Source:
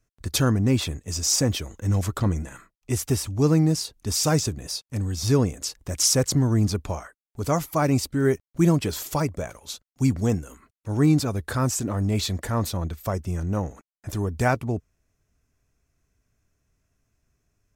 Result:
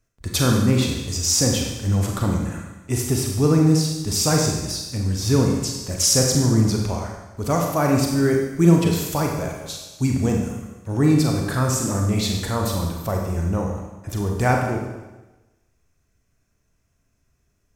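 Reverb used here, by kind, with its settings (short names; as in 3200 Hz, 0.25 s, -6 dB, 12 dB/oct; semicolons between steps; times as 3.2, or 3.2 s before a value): Schroeder reverb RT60 1.1 s, combs from 32 ms, DRR 0.5 dB; gain +1 dB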